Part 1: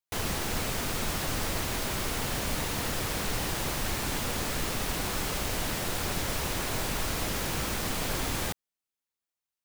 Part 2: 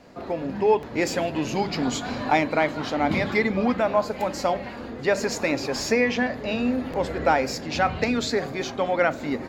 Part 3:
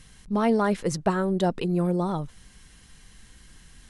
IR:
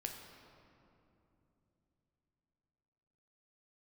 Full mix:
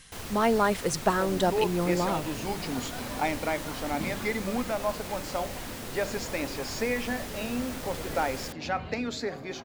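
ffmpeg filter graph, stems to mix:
-filter_complex "[0:a]volume=-8dB[link_01];[1:a]adelay=900,volume=-8dB[link_02];[2:a]lowshelf=frequency=350:gain=-11,volume=3dB[link_03];[link_01][link_02][link_03]amix=inputs=3:normalize=0"

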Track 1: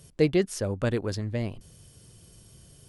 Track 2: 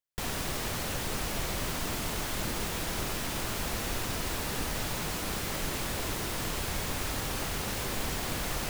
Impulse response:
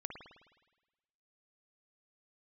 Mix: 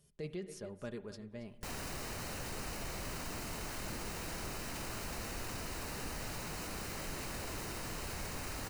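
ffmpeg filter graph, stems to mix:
-filter_complex "[0:a]aecho=1:1:4.9:0.54,volume=-19dB,asplit=3[link_01][link_02][link_03];[link_02]volume=-8.5dB[link_04];[link_03]volume=-13.5dB[link_05];[1:a]equalizer=frequency=15000:width_type=o:width=0.44:gain=-5,bandreject=frequency=3400:width=5.5,volume=25dB,asoftclip=hard,volume=-25dB,adelay=1450,volume=-3dB[link_06];[2:a]atrim=start_sample=2205[link_07];[link_04][link_07]afir=irnorm=-1:irlink=0[link_08];[link_05]aecho=0:1:276:1[link_09];[link_01][link_06][link_08][link_09]amix=inputs=4:normalize=0,alimiter=level_in=9.5dB:limit=-24dB:level=0:latency=1:release=29,volume=-9.5dB"

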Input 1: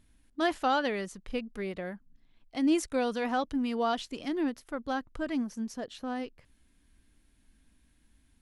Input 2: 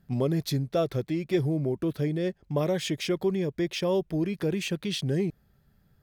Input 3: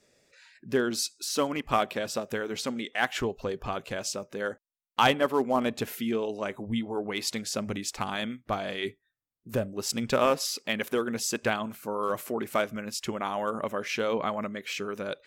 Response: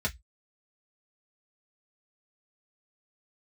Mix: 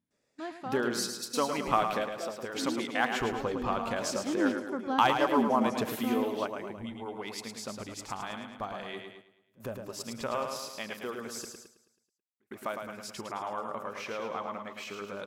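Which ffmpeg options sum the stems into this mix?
-filter_complex "[0:a]highpass=130,equalizer=frequency=180:width_type=o:width=1.9:gain=12.5,volume=-7dB,afade=type=in:start_time=4.01:duration=0.37:silence=0.281838,asplit=3[link_01][link_02][link_03];[link_02]volume=-11.5dB[link_04];[1:a]highpass=frequency=240:width=0.5412,highpass=frequency=240:width=1.3066,adelay=1450,volume=-16dB[link_05];[2:a]acompressor=threshold=-34dB:ratio=1.5,volume=-1dB,asplit=3[link_06][link_07][link_08];[link_06]atrim=end=11.34,asetpts=PTS-STARTPTS,afade=type=out:start_time=11.336:duration=0.004:curve=hsin[link_09];[link_07]atrim=start=11.34:end=12.4,asetpts=PTS-STARTPTS,volume=0[link_10];[link_08]atrim=start=12.4,asetpts=PTS-STARTPTS,afade=type=in:duration=0.004:curve=hsin[link_11];[link_09][link_10][link_11]concat=n=3:v=0:a=1,asplit=2[link_12][link_13];[link_13]volume=-7dB[link_14];[link_03]apad=whole_len=673336[link_15];[link_12][link_15]sidechaingate=range=-33dB:threshold=-60dB:ratio=16:detection=peak[link_16];[link_04][link_14]amix=inputs=2:normalize=0,aecho=0:1:108|216|324|432|540|648|756|864:1|0.52|0.27|0.141|0.0731|0.038|0.0198|0.0103[link_17];[link_01][link_05][link_16][link_17]amix=inputs=4:normalize=0,agate=range=-6dB:threshold=-52dB:ratio=16:detection=peak,equalizer=frequency=980:width_type=o:width=1.2:gain=7"

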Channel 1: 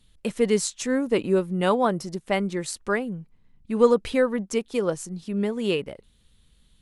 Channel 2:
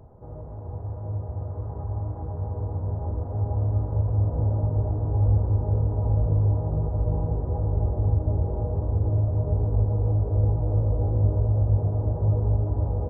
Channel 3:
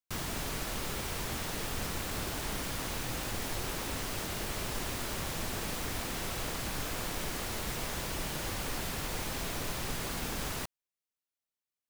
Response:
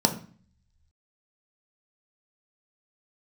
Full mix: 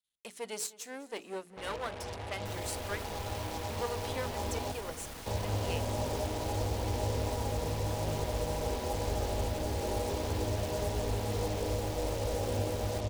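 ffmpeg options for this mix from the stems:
-filter_complex "[0:a]aeval=exprs='if(lt(val(0),0),0.251*val(0),val(0))':channel_layout=same,agate=range=-15dB:threshold=-49dB:ratio=16:detection=peak,highpass=frequency=540:poles=1,volume=-11dB,asplit=2[link_01][link_02];[link_02]volume=-17.5dB[link_03];[1:a]equalizer=frequency=125:width_type=o:width=1:gain=-10,equalizer=frequency=250:width_type=o:width=1:gain=6,equalizer=frequency=500:width_type=o:width=1:gain=5,equalizer=frequency=1000:width_type=o:width=1:gain=10,acrusher=bits=5:mix=0:aa=0.5,adelay=1350,volume=-7.5dB,asplit=3[link_04][link_05][link_06];[link_04]atrim=end=4.72,asetpts=PTS-STARTPTS,afade=type=out:start_time=4.716:duration=0.004:curve=hsin[link_07];[link_05]atrim=start=4.72:end=5.26,asetpts=PTS-STARTPTS,volume=0[link_08];[link_06]atrim=start=5.26,asetpts=PTS-STARTPTS,afade=type=in:duration=0.004:curve=hsin[link_09];[link_07][link_08][link_09]concat=n=3:v=0:a=1,asplit=2[link_10][link_11];[link_11]volume=-9dB[link_12];[2:a]alimiter=level_in=9.5dB:limit=-24dB:level=0:latency=1,volume=-9.5dB,adelay=2350,volume=-3dB[link_13];[link_01][link_10]amix=inputs=2:normalize=0,highshelf=frequency=2700:gain=9,alimiter=limit=-23dB:level=0:latency=1:release=345,volume=0dB[link_14];[link_03][link_12]amix=inputs=2:normalize=0,aecho=0:1:202|404|606|808|1010|1212|1414|1616|1818:1|0.58|0.336|0.195|0.113|0.0656|0.0381|0.0221|0.0128[link_15];[link_13][link_14][link_15]amix=inputs=3:normalize=0,bandreject=frequency=60:width_type=h:width=6,bandreject=frequency=120:width_type=h:width=6,bandreject=frequency=180:width_type=h:width=6,bandreject=frequency=240:width_type=h:width=6,bandreject=frequency=300:width_type=h:width=6,bandreject=frequency=360:width_type=h:width=6,bandreject=frequency=420:width_type=h:width=6"

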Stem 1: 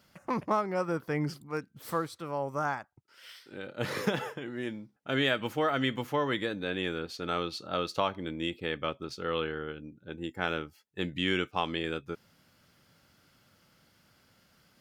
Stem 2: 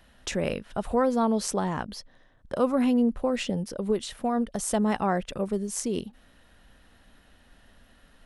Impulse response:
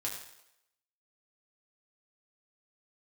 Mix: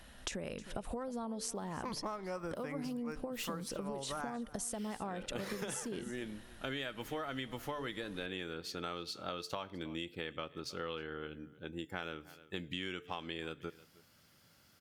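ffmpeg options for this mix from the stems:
-filter_complex "[0:a]highshelf=frequency=4400:gain=6.5,adelay=1550,volume=-4dB,asplit=3[link_01][link_02][link_03];[link_02]volume=-21.5dB[link_04];[link_03]volume=-23.5dB[link_05];[1:a]equalizer=frequency=9500:width=0.48:gain=5,acompressor=threshold=-33dB:ratio=6,volume=1.5dB,asplit=2[link_06][link_07];[link_07]volume=-19.5dB[link_08];[2:a]atrim=start_sample=2205[link_09];[link_04][link_09]afir=irnorm=-1:irlink=0[link_10];[link_05][link_08]amix=inputs=2:normalize=0,aecho=0:1:312:1[link_11];[link_01][link_06][link_10][link_11]amix=inputs=4:normalize=0,bandreject=frequency=147.5:width_type=h:width=4,bandreject=frequency=295:width_type=h:width=4,bandreject=frequency=442.5:width_type=h:width=4,acompressor=threshold=-37dB:ratio=6"

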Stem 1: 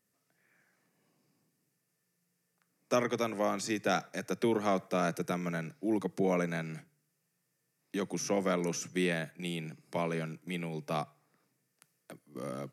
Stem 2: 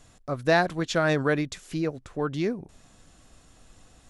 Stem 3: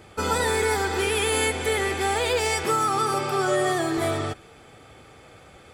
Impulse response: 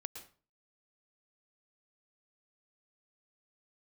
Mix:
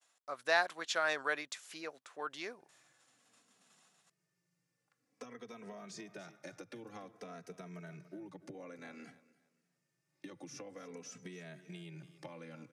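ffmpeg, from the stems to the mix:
-filter_complex "[0:a]acompressor=threshold=-35dB:ratio=6,asplit=2[link_01][link_02];[link_02]adelay=2.8,afreqshift=-0.53[link_03];[link_01][link_03]amix=inputs=2:normalize=1,adelay=2300,volume=0dB,asplit=2[link_04][link_05];[link_05]volume=-22.5dB[link_06];[1:a]agate=range=-33dB:threshold=-48dB:ratio=3:detection=peak,highpass=840,volume=-5dB[link_07];[link_04]lowpass=7300,acompressor=threshold=-46dB:ratio=6,volume=0dB[link_08];[link_06]aecho=0:1:287|574|861|1148:1|0.25|0.0625|0.0156[link_09];[link_07][link_08][link_09]amix=inputs=3:normalize=0"

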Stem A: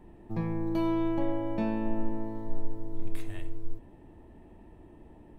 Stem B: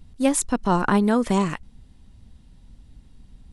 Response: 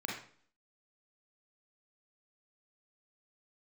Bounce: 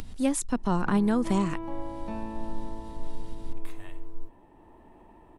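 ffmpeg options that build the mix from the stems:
-filter_complex "[0:a]acompressor=mode=upward:threshold=-43dB:ratio=2.5,equalizer=frequency=1000:width_type=o:width=0.72:gain=8.5,adelay=500,volume=-1.5dB[link_01];[1:a]acompressor=mode=upward:threshold=-28dB:ratio=2.5,volume=2.5dB[link_02];[link_01][link_02]amix=inputs=2:normalize=0,equalizer=frequency=78:width=0.38:gain=-8,acrossover=split=260[link_03][link_04];[link_04]acompressor=threshold=-46dB:ratio=1.5[link_05];[link_03][link_05]amix=inputs=2:normalize=0"

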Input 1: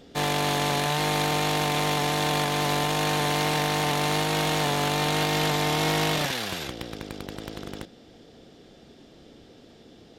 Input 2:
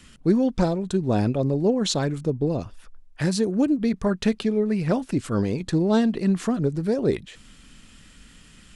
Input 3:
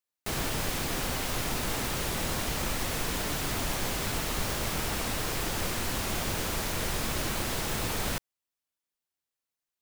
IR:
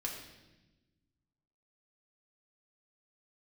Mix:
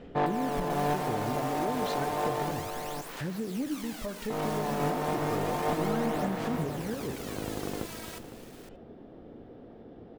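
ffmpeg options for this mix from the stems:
-filter_complex "[0:a]lowpass=1100,bandreject=frequency=50:width_type=h:width=6,bandreject=frequency=100:width_type=h:width=6,bandreject=frequency=150:width_type=h:width=6,bandreject=frequency=200:width_type=h:width=6,bandreject=frequency=250:width_type=h:width=6,bandreject=frequency=300:width_type=h:width=6,aeval=exprs='clip(val(0),-1,0.0562)':channel_layout=same,volume=1.5dB,asplit=3[link_01][link_02][link_03];[link_01]atrim=end=2.51,asetpts=PTS-STARTPTS,afade=type=out:start_time=2.506:duration=0.004:curve=hsin[link_04];[link_02]atrim=start=2.51:end=4.3,asetpts=PTS-STARTPTS,volume=0[link_05];[link_03]atrim=start=4.3,asetpts=PTS-STARTPTS,afade=type=in:duration=0.004:curve=hsin[link_06];[link_04][link_05][link_06]concat=n=3:v=0:a=1,asplit=3[link_07][link_08][link_09];[link_08]volume=-12dB[link_10];[link_09]volume=-10.5dB[link_11];[1:a]lowpass=3200,volume=-13dB,asplit=3[link_12][link_13][link_14];[link_13]volume=-10.5dB[link_15];[2:a]asoftclip=type=tanh:threshold=-28.5dB,highpass=400,volume=-9.5dB,asplit=2[link_16][link_17];[link_17]volume=-9.5dB[link_18];[link_14]apad=whole_len=449241[link_19];[link_07][link_19]sidechaincompress=threshold=-42dB:ratio=8:attack=6.2:release=288[link_20];[link_12][link_16]amix=inputs=2:normalize=0,aphaser=in_gain=1:out_gain=1:delay=3.1:decay=0.6:speed=0.31:type=sinusoidal,alimiter=level_in=3dB:limit=-24dB:level=0:latency=1:release=208,volume=-3dB,volume=0dB[link_21];[3:a]atrim=start_sample=2205[link_22];[link_10][link_15]amix=inputs=2:normalize=0[link_23];[link_23][link_22]afir=irnorm=-1:irlink=0[link_24];[link_11][link_18]amix=inputs=2:normalize=0,aecho=0:1:508:1[link_25];[link_20][link_21][link_24][link_25]amix=inputs=4:normalize=0"

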